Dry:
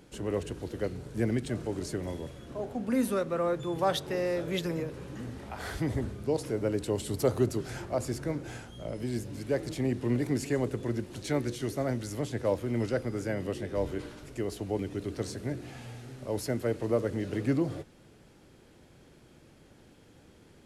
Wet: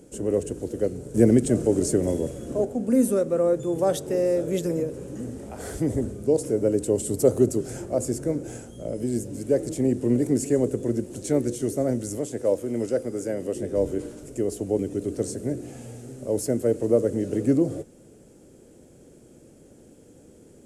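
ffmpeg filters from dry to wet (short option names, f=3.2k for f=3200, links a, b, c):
-filter_complex "[0:a]asettb=1/sr,asplit=3[a][b][c];[a]atrim=end=1.144[d];[b]atrim=start=1.14:end=2.65,asetpts=PTS-STARTPTS,afade=t=in:d=0.004:c=qsin,afade=t=out:st=1.506:d=0.004:c=qsin,acontrast=36[e];[c]atrim=start=2.646[f];[d][e]acrossfade=d=0.004:c1=hsin:c2=qsin[g];[g][f]acrossfade=d=0.004:c1=qsin:c2=hsin,asettb=1/sr,asplit=3[h][i][j];[h]atrim=end=12.184[k];[i]atrim=start=12.18:end=13.56,asetpts=PTS-STARTPTS,afade=t=in:d=0.004:c=qsin,afade=t=out:st=1.376:d=0.004:c=qsin,lowshelf=f=230:g=-9.5[l];[j]atrim=start=13.556[m];[k][l]acrossfade=d=0.004:c1=hsin:c2=qsin[n];[n][m]acrossfade=d=0.004:c1=qsin:c2=hsin,equalizer=f=250:t=o:w=1:g=5,equalizer=f=500:t=o:w=1:g=8,equalizer=f=1k:t=o:w=1:g=-7,equalizer=f=2k:t=o:w=1:g=-5,equalizer=f=4k:t=o:w=1:g=-9,equalizer=f=8k:t=o:w=1:g=12,volume=1.5dB"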